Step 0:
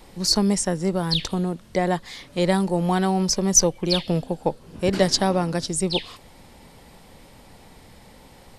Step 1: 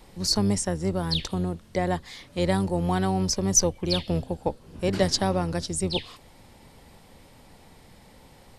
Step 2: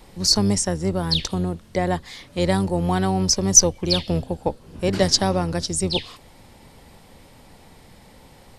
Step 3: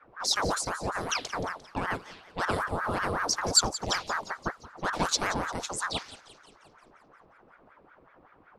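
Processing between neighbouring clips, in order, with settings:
octave divider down 1 oct, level -5 dB; trim -4 dB
dynamic bell 5.7 kHz, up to +5 dB, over -42 dBFS, Q 1.5; trim +3.5 dB
level-controlled noise filter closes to 950 Hz, open at -20 dBFS; thinning echo 175 ms, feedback 56%, high-pass 350 Hz, level -15.5 dB; ring modulator with a swept carrier 860 Hz, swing 70%, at 5.3 Hz; trim -6.5 dB

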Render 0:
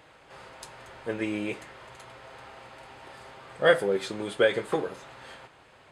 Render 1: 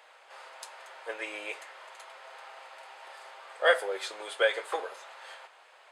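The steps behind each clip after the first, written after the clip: high-pass 560 Hz 24 dB/octave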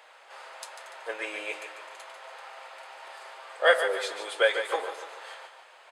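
feedback delay 145 ms, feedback 44%, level -9 dB; trim +2.5 dB

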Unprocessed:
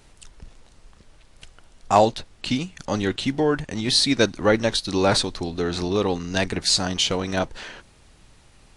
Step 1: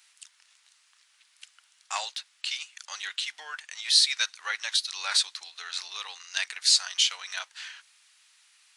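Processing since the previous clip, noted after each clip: Bessel high-pass 2 kHz, order 4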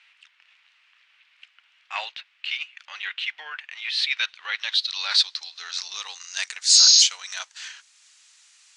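spectral replace 6.76–7.00 s, 1.6–6.7 kHz before; transient shaper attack -7 dB, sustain -3 dB; low-pass sweep 2.6 kHz -> 7.1 kHz, 3.94–6.29 s; trim +2.5 dB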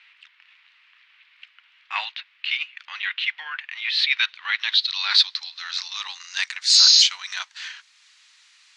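graphic EQ 250/500/1000/2000/4000/8000 Hz +5/-10/+8/+7/+7/-5 dB; trim -4 dB

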